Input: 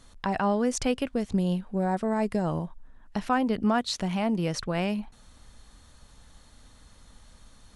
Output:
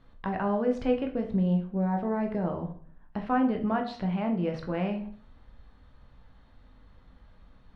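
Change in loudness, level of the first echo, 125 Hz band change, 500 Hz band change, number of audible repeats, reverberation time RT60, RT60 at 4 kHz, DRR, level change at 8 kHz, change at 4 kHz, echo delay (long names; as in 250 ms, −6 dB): −1.5 dB, no echo audible, 0.0 dB, −1.0 dB, no echo audible, 0.50 s, 0.35 s, 3.0 dB, below −25 dB, −12.5 dB, no echo audible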